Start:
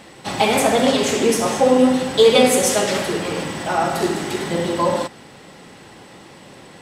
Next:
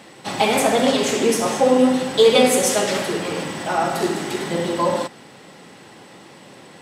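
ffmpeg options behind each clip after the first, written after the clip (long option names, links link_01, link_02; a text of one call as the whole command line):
ffmpeg -i in.wav -af "highpass=120,volume=-1dB" out.wav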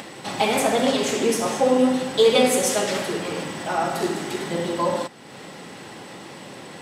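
ffmpeg -i in.wav -af "acompressor=mode=upward:threshold=-27dB:ratio=2.5,volume=-3dB" out.wav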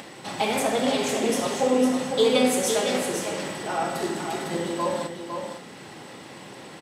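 ffmpeg -i in.wav -filter_complex "[0:a]asplit=2[link_01][link_02];[link_02]adelay=32,volume=-11.5dB[link_03];[link_01][link_03]amix=inputs=2:normalize=0,aecho=1:1:505:0.473,volume=-4dB" out.wav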